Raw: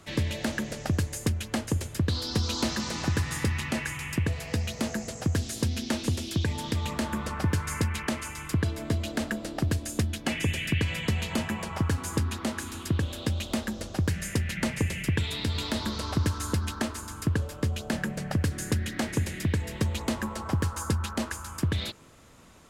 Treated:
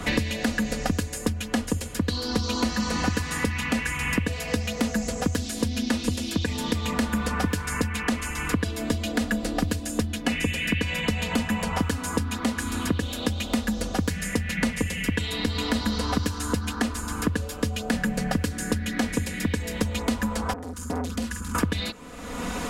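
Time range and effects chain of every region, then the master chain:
20.53–21.55 passive tone stack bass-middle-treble 6-0-2 + doubler 48 ms -7 dB + core saturation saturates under 910 Hz
whole clip: comb 4.1 ms, depth 83%; three-band squash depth 100%

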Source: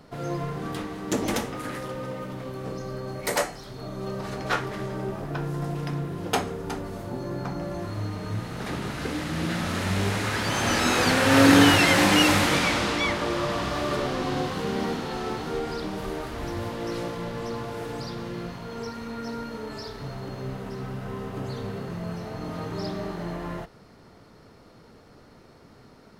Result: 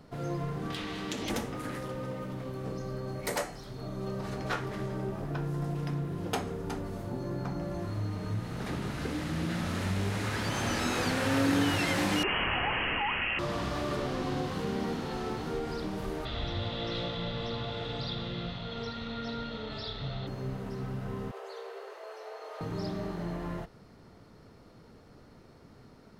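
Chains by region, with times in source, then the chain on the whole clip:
0.7–1.3 bell 3300 Hz +14.5 dB 1.9 oct + compressor 4:1, threshold -28 dBFS
12.23–13.39 tilt +1.5 dB/oct + inverted band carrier 3100 Hz + fast leveller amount 50%
16.25–20.27 synth low-pass 3600 Hz, resonance Q 9.2 + comb 1.5 ms, depth 38%
21.31–22.61 steep high-pass 400 Hz 72 dB/oct + high shelf 6300 Hz -6 dB
whole clip: low shelf 300 Hz +5 dB; compressor 2:1, threshold -24 dBFS; gain -5.5 dB

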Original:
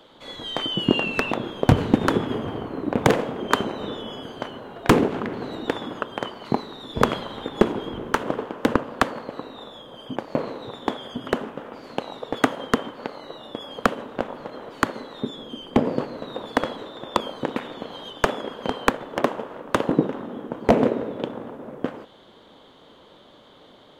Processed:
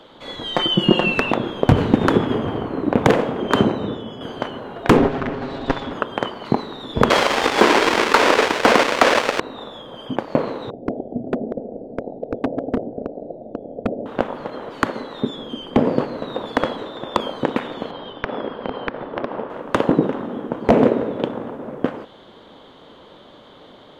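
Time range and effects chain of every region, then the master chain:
0.53–1.14 notch 2500 Hz, Q 26 + comb 5.6 ms, depth 79%
3.53–4.21 HPF 76 Hz + low shelf 320 Hz +9.5 dB + three-band expander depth 70%
4.97–5.93 minimum comb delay 7.4 ms + air absorption 69 m
7.1–9.4 half-waves squared off + BPF 470–6100 Hz + sample leveller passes 3
10.7–14.06 regenerating reverse delay 0.121 s, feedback 56%, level -10 dB + elliptic low-pass 700 Hz + overloaded stage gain 20 dB
17.91–19.5 high shelf 3300 Hz -11.5 dB + compressor 12:1, threshold -25 dBFS + steep low-pass 5700 Hz 96 dB/oct
whole clip: high shelf 5700 Hz -8 dB; maximiser +7 dB; gain -1 dB

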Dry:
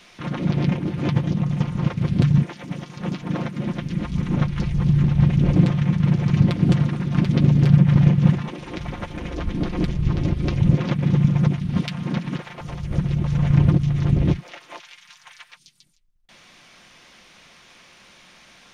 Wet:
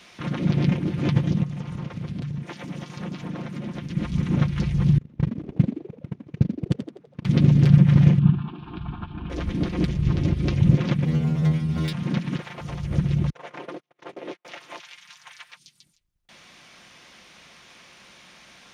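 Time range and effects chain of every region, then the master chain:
1.43–3.97 compressor, threshold -28 dBFS + mismatched tape noise reduction encoder only
4.98–7.25 gate -13 dBFS, range -35 dB + frequency-shifting echo 83 ms, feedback 44%, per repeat +78 Hz, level -9.5 dB
8.19–9.3 air absorption 380 m + fixed phaser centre 2000 Hz, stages 6
11.05–11.93 sample leveller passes 3 + metallic resonator 78 Hz, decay 0.51 s, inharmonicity 0.002
13.3–14.45 HPF 430 Hz 24 dB/oct + gate -39 dBFS, range -38 dB + high shelf 2100 Hz -8 dB
whole clip: HPF 45 Hz; dynamic EQ 870 Hz, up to -4 dB, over -38 dBFS, Q 0.99

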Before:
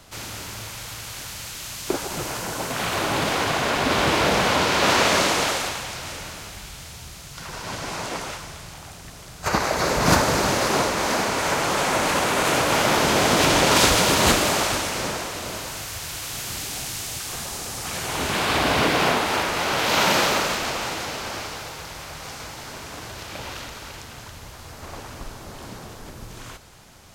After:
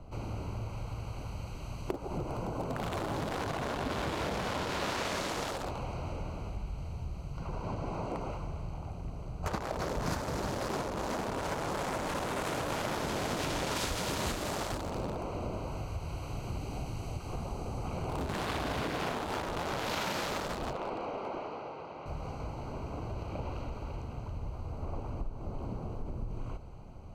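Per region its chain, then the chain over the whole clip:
20.73–22.06 BPF 290–3800 Hz + Doppler distortion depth 0.37 ms
whole clip: Wiener smoothing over 25 samples; low shelf 81 Hz +10 dB; compressor 6:1, threshold -32 dBFS

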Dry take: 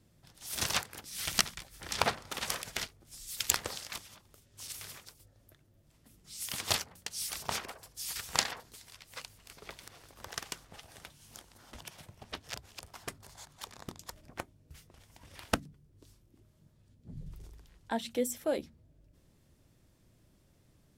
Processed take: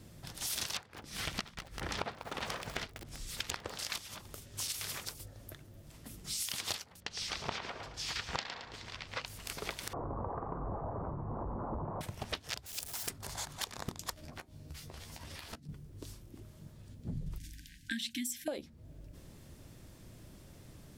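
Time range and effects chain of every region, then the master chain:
0.77–3.79 LPF 1300 Hz 6 dB/oct + lo-fi delay 0.195 s, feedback 55%, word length 7-bit, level -14 dB
7–9.26 air absorption 170 m + feedback echo 0.11 s, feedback 27%, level -11 dB
9.93–12.01 zero-crossing step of -35 dBFS + elliptic low-pass 1100 Hz, stop band 70 dB + flange 1.3 Hz, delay 2.1 ms, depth 10 ms, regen -73%
12.66–13.1 zero-crossing step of -44.5 dBFS + pre-emphasis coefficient 0.8 + notch 1100 Hz, Q 9.7
14.13–15.69 bell 4400 Hz +5 dB 0.51 oct + compressor 12:1, threshold -56 dBFS + doubler 13 ms -6 dB
17.38–18.48 brick-wall FIR band-stop 320–1500 Hz + low shelf 170 Hz -11 dB
whole clip: dynamic EQ 4000 Hz, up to +5 dB, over -48 dBFS, Q 0.84; compressor 12:1, threshold -47 dBFS; gain +12 dB

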